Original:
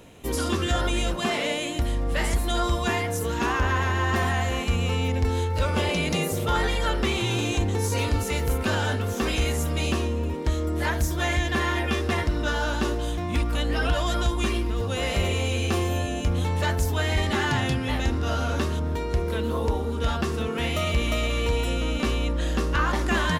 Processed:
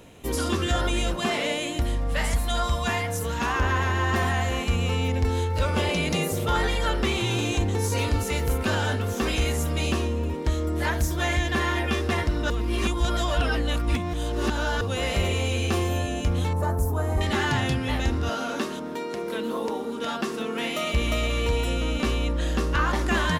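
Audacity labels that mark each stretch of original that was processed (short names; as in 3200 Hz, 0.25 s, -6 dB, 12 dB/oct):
1.960000	3.560000	bell 350 Hz -13.5 dB 0.35 oct
12.500000	14.810000	reverse
16.530000	17.210000	EQ curve 1200 Hz 0 dB, 1900 Hz -15 dB, 3200 Hz -23 dB, 11000 Hz 0 dB
18.290000	20.940000	Chebyshev high-pass 210 Hz, order 3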